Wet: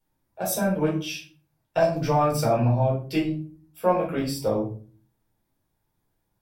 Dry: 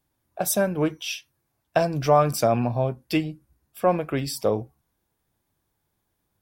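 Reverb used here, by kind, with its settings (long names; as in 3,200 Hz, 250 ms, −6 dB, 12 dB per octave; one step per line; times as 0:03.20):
rectangular room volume 290 cubic metres, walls furnished, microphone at 4.5 metres
level −9.5 dB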